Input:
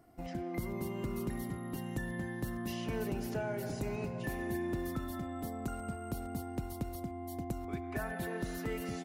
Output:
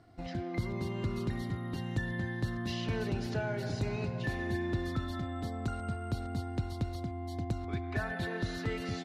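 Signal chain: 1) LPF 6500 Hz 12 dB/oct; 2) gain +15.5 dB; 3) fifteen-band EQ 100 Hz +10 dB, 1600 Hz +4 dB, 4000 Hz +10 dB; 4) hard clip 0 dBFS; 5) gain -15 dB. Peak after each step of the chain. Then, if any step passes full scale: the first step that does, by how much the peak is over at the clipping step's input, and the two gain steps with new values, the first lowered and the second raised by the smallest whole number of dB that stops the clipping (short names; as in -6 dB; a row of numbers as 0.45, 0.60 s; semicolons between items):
-26.0, -10.5, -6.0, -6.0, -21.0 dBFS; no overload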